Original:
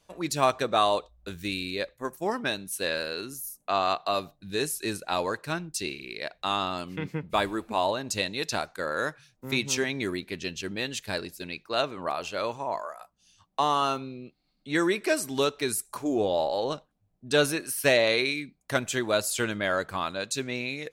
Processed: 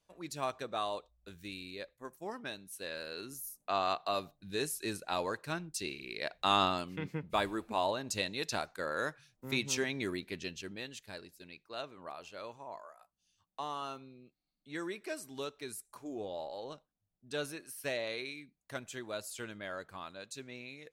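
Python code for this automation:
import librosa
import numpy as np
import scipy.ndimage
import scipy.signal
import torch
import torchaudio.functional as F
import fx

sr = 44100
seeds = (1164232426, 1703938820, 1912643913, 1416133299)

y = fx.gain(x, sr, db=fx.line((2.89, -13.0), (3.34, -6.5), (5.88, -6.5), (6.64, 1.0), (6.91, -6.0), (10.36, -6.0), (11.07, -15.0)))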